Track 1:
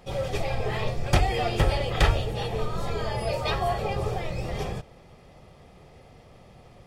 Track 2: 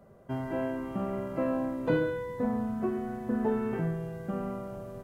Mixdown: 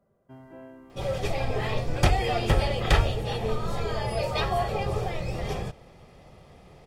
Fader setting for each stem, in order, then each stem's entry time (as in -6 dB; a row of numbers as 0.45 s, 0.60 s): 0.0 dB, -13.5 dB; 0.90 s, 0.00 s